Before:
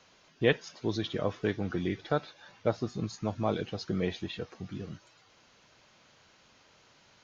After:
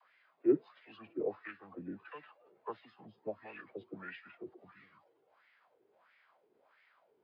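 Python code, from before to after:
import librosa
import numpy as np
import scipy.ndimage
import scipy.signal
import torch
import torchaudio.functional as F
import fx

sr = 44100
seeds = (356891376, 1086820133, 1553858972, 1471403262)

y = fx.wah_lfo(x, sr, hz=1.5, low_hz=480.0, high_hz=2700.0, q=4.7)
y = fx.dispersion(y, sr, late='lows', ms=46.0, hz=440.0)
y = fx.formant_shift(y, sr, semitones=-5)
y = y * librosa.db_to_amplitude(2.5)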